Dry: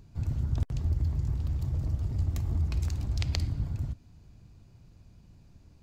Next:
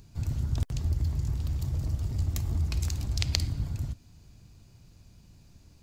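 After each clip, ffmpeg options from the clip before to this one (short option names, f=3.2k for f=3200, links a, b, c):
-af "highshelf=f=2.9k:g=10.5"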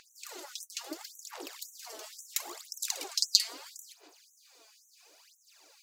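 -af "aphaser=in_gain=1:out_gain=1:delay=4.7:decay=0.69:speed=0.74:type=sinusoidal,afftfilt=real='re*gte(b*sr/1024,290*pow(5900/290,0.5+0.5*sin(2*PI*1.9*pts/sr)))':imag='im*gte(b*sr/1024,290*pow(5900/290,0.5+0.5*sin(2*PI*1.9*pts/sr)))':win_size=1024:overlap=0.75,volume=5dB"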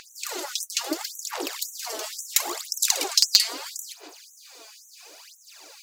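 -filter_complex "[0:a]asplit=2[a][b];[b]alimiter=limit=-9.5dB:level=0:latency=1:release=423,volume=-1.5dB[c];[a][c]amix=inputs=2:normalize=0,asoftclip=type=tanh:threshold=-9.5dB,volume=7.5dB"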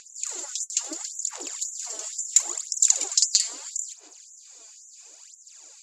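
-af "lowpass=f=7.2k:t=q:w=12,volume=-10.5dB"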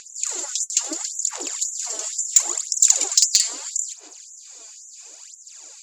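-af "asoftclip=type=tanh:threshold=-7.5dB,volume=6dB"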